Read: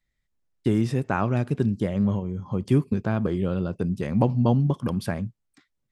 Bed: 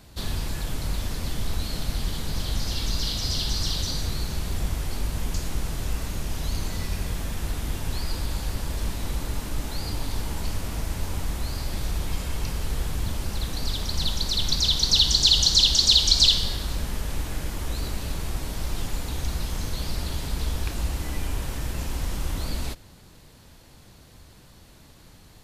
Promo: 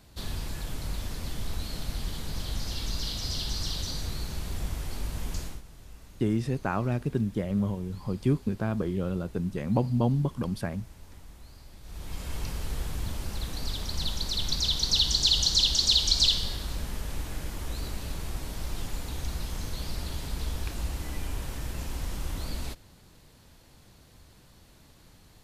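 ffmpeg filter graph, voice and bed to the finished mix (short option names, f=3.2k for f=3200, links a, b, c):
-filter_complex "[0:a]adelay=5550,volume=-4.5dB[a];[1:a]volume=9.5dB,afade=t=out:st=5.41:d=0.21:silence=0.188365,afade=t=in:st=11.83:d=0.52:silence=0.177828[b];[a][b]amix=inputs=2:normalize=0"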